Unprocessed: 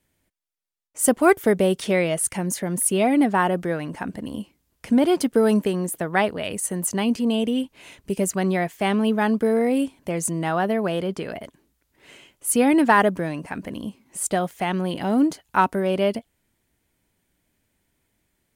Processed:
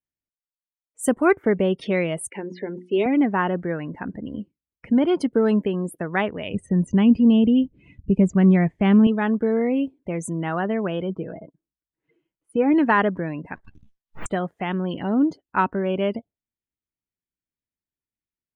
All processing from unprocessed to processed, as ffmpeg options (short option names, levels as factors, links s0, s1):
-filter_complex "[0:a]asettb=1/sr,asplit=3[s0][s1][s2];[s0]atrim=end=2.304[s3];[s1]atrim=start=2.3:end=3.06,asetpts=PTS-STARTPTS,afade=t=in:d=0.004:c=qsin,afade=t=out:st=0.756:d=0.004:c=qsin,highpass=280,equalizer=f=410:t=q:w=4:g=8,equalizer=f=670:t=q:w=4:g=-6,equalizer=f=1200:t=q:w=4:g=-8,lowpass=f=4800:w=0.5412,lowpass=f=4800:w=1.3066,bandreject=f=60:t=h:w=6,bandreject=f=120:t=h:w=6,bandreject=f=180:t=h:w=6,bandreject=f=240:t=h:w=6,bandreject=f=300:t=h:w=6,bandreject=f=360:t=h:w=6[s4];[s2]atrim=start=3.056[s5];[s3][s4]acrossfade=d=0.004:c1=hsin:c2=qsin[s6];[s6][s5]acrossfade=d=0.004:c1=qsin:c2=hsin,asettb=1/sr,asplit=3[s7][s8][s9];[s7]atrim=end=6.544[s10];[s8]atrim=start=6.54:end=9.07,asetpts=PTS-STARTPTS,afade=t=in:d=0.004:c=qsin,afade=t=out:st=2.526:d=0.004:c=qsin,lowpass=11000,acrossover=split=8300[s11][s12];[s12]acompressor=threshold=0.0112:ratio=4:attack=1:release=60[s13];[s11][s13]amix=inputs=2:normalize=0,bass=f=250:g=13,treble=f=4000:g=-4[s14];[s9]atrim=start=9.066[s15];[s10][s14]acrossfade=d=0.004:c1=hsin:c2=qsin[s16];[s16][s15]acrossfade=d=0.004:c1=qsin:c2=hsin,asettb=1/sr,asplit=3[s17][s18][s19];[s17]atrim=end=11.094[s20];[s18]atrim=start=11.09:end=12.74,asetpts=PTS-STARTPTS,afade=t=in:d=0.004:c=qsin,afade=t=out:st=1.646:d=0.004:c=qsin,lowpass=f=1100:p=1,aecho=1:1:6.2:0.41,atrim=end_sample=72765[s21];[s19]atrim=start=12.736[s22];[s20][s21]acrossfade=d=0.004:c1=hsin:c2=qsin[s23];[s23][s22]acrossfade=d=0.004:c1=qsin:c2=hsin,asettb=1/sr,asplit=3[s24][s25][s26];[s24]atrim=end=13.554[s27];[s25]atrim=start=13.55:end=14.26,asetpts=PTS-STARTPTS,afade=t=in:d=0.004:c=qsin,afade=t=out:st=0.706:d=0.004:c=qsin,highpass=910,aeval=exprs='abs(val(0))':c=same[s28];[s26]atrim=start=14.256[s29];[s27][s28]acrossfade=d=0.004:c1=hsin:c2=qsin[s30];[s30][s29]acrossfade=d=0.004:c1=qsin:c2=hsin,lowpass=f=3200:p=1,afftdn=nr=26:nf=-40,equalizer=f=710:t=o:w=0.86:g=-4.5"